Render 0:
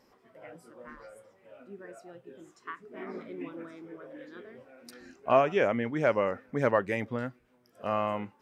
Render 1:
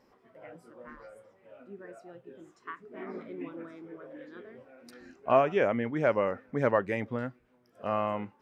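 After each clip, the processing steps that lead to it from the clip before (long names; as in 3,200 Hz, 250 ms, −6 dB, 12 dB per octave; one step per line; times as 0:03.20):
high-shelf EQ 3,900 Hz −8 dB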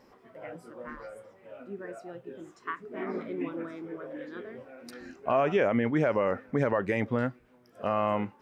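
brickwall limiter −21.5 dBFS, peak gain reduction 10.5 dB
level +6 dB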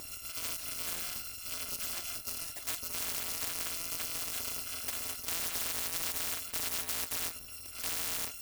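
samples in bit-reversed order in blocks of 256 samples
every bin compressed towards the loudest bin 10 to 1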